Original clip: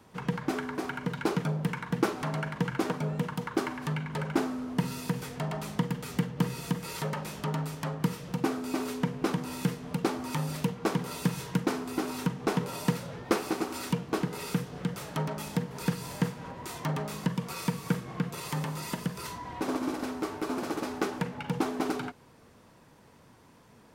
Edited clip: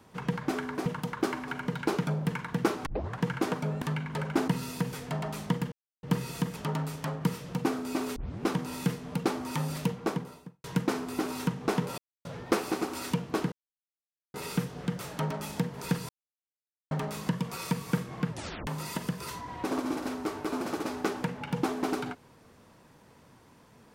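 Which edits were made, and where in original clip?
2.24 tape start 0.35 s
3.2–3.82 move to 0.86
4.48–4.77 cut
6.01–6.32 mute
6.85–7.35 cut
8.95 tape start 0.27 s
10.68–11.43 studio fade out
12.77–13.04 mute
14.31 insert silence 0.82 s
16.06–16.88 mute
18.24 tape stop 0.40 s

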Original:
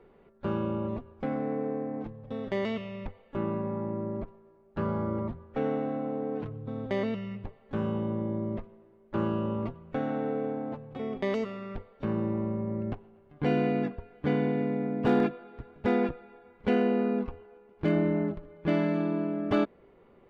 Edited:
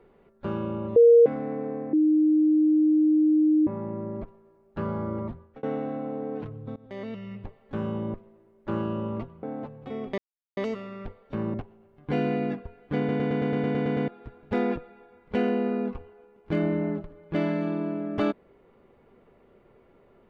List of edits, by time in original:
0.96–1.26 bleep 469 Hz -11 dBFS
1.93–3.67 bleep 308 Hz -17 dBFS
5.35–5.63 fade out
6.76–7.39 fade in, from -22.5 dB
8.14–8.6 cut
9.89–10.52 cut
11.27 insert silence 0.39 s
12.24–12.87 cut
14.31 stutter in place 0.11 s, 10 plays

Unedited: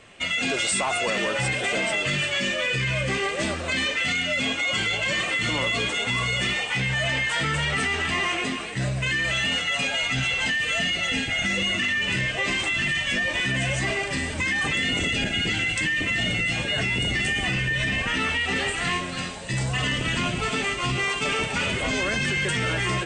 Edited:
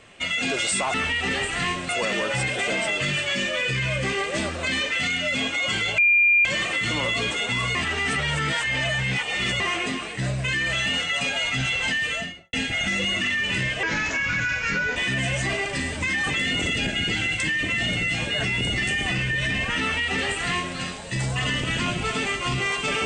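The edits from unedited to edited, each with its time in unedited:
5.03 add tone 2400 Hz -14 dBFS 0.47 s
6.33–8.18 reverse
10.62–11.11 studio fade out
12.41–13.34 speed 82%
18.19–19.14 copy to 0.94

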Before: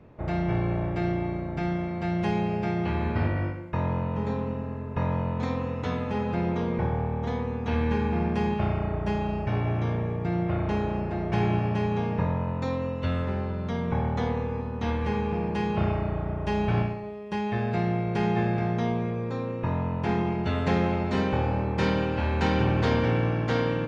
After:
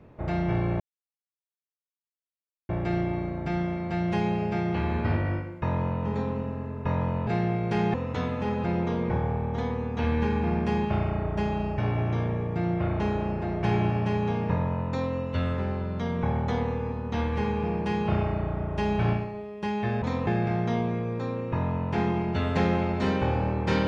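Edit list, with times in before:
0.8 insert silence 1.89 s
5.38–5.63 swap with 17.71–18.38

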